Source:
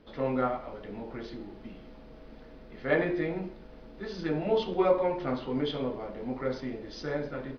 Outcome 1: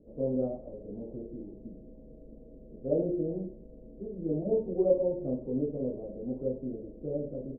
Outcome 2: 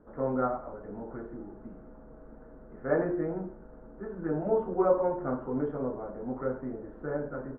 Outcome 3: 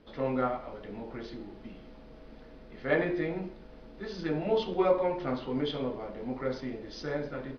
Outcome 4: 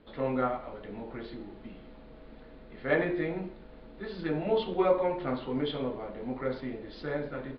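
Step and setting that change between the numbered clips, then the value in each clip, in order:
elliptic low-pass filter, frequency: 580, 1,500, 12,000, 4,200 Hertz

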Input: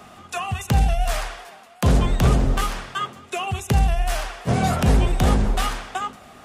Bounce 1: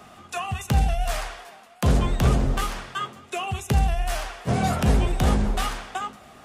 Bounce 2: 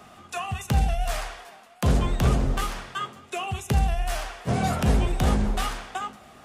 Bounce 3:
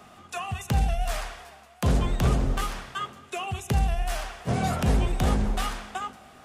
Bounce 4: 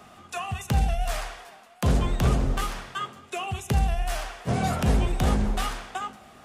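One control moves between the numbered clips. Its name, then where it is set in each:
tuned comb filter, decay: 0.16, 0.38, 2.1, 0.81 seconds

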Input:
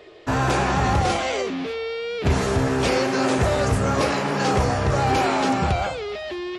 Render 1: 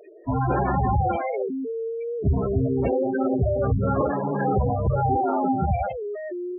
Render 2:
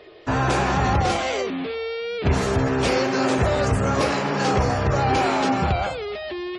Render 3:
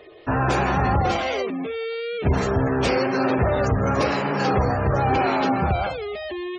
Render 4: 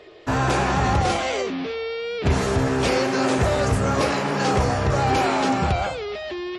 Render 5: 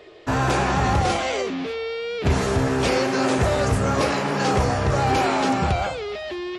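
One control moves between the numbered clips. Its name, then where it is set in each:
gate on every frequency bin, under each frame's peak: −10, −35, −25, −45, −60 decibels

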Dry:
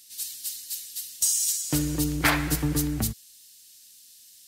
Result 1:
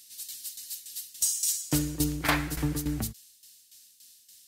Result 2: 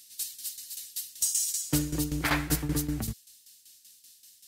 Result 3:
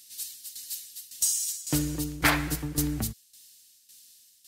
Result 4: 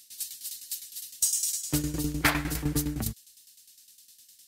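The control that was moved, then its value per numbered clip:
shaped tremolo, speed: 3.5, 5.2, 1.8, 9.8 Hertz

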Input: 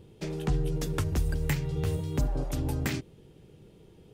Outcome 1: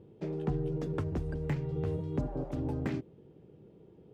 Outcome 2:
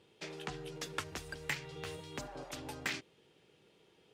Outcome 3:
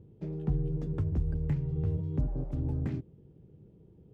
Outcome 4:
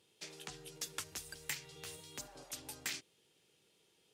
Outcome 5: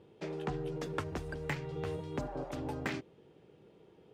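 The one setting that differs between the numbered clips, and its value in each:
resonant band-pass, frequency: 340, 2,500, 120, 7,000, 900 Hertz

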